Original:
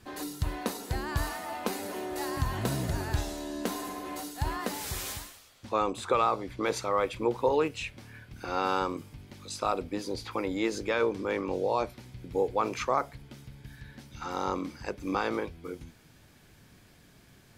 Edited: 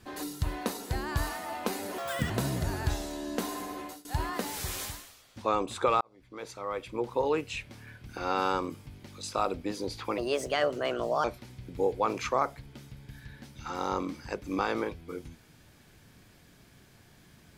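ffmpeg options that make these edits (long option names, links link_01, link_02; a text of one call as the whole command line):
ffmpeg -i in.wav -filter_complex "[0:a]asplit=7[link_01][link_02][link_03][link_04][link_05][link_06][link_07];[link_01]atrim=end=1.984[link_08];[link_02]atrim=start=1.98:end=2.57,asetpts=PTS-STARTPTS,asetrate=81585,aresample=44100,atrim=end_sample=14064,asetpts=PTS-STARTPTS[link_09];[link_03]atrim=start=2.566:end=4.32,asetpts=PTS-STARTPTS,afade=type=out:start_time=1.474:duration=0.28:silence=0.0794328[link_10];[link_04]atrim=start=4.32:end=6.28,asetpts=PTS-STARTPTS,afade=type=in:duration=0.004:curve=hsin:silence=0.0794328,afade=type=out:start_time=1.956:duration=0.004:curve=hsin[link_11];[link_05]atrim=start=6.28:end=10.454,asetpts=PTS-STARTPTS,afade=type=in:duration=1.63[link_12];[link_06]atrim=start=10.45:end=11.8,asetpts=PTS-STARTPTS,asetrate=56007,aresample=44100[link_13];[link_07]atrim=start=11.796[link_14];[link_08][link_09]acrossfade=duration=0.004:curve1=hsin:curve2=hsin[link_15];[link_10][link_11][link_12]concat=n=3:v=0:a=1[link_16];[link_15][link_16]acrossfade=duration=0.004:curve1=hsin:curve2=hsin[link_17];[link_17][link_13]acrossfade=duration=0.004:curve1=hsin:curve2=hsin[link_18];[link_18][link_14]acrossfade=duration=0.004:curve1=hsin:curve2=hsin" out.wav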